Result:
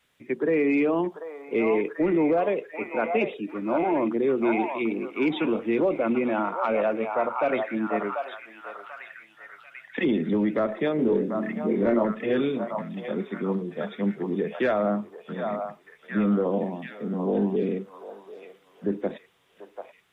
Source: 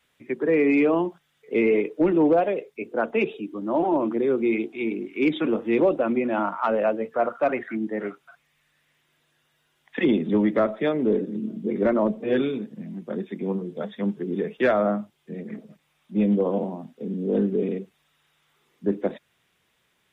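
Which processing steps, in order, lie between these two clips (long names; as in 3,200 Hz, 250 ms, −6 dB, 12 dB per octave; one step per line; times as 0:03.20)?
brickwall limiter −16 dBFS, peak gain reduction 4.5 dB
0:10.96–0:12.05: double-tracking delay 26 ms −3 dB
echo through a band-pass that steps 740 ms, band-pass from 910 Hz, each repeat 0.7 octaves, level −1.5 dB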